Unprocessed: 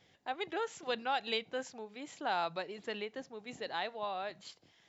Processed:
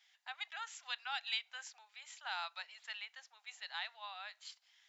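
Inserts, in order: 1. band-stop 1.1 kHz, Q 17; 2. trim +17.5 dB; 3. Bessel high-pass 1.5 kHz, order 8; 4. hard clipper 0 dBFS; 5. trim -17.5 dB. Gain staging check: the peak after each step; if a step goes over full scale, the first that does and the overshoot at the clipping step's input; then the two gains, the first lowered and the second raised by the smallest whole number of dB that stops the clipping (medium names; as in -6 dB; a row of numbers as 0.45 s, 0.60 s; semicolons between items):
-20.5 dBFS, -3.0 dBFS, -5.5 dBFS, -5.5 dBFS, -23.0 dBFS; nothing clips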